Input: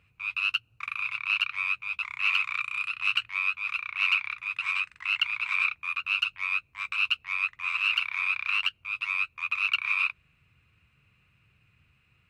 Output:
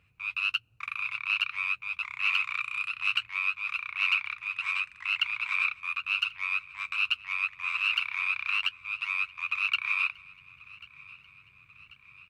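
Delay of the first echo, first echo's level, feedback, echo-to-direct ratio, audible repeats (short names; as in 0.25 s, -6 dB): 1.089 s, -22.0 dB, 59%, -20.0 dB, 3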